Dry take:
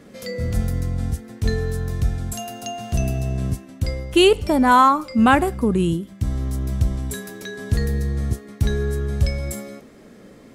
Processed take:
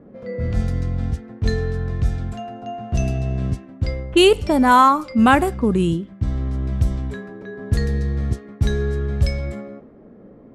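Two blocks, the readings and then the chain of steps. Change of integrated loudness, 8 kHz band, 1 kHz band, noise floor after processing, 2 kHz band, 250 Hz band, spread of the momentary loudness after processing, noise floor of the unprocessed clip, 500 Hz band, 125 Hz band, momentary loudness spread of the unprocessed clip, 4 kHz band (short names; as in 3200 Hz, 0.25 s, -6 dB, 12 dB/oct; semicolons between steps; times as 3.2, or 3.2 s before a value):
+1.0 dB, -3.5 dB, +1.0 dB, -45 dBFS, +1.0 dB, +1.0 dB, 16 LU, -46 dBFS, +1.0 dB, +1.0 dB, 14 LU, +0.5 dB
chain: low-pass opened by the level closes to 790 Hz, open at -13 dBFS; gain +1 dB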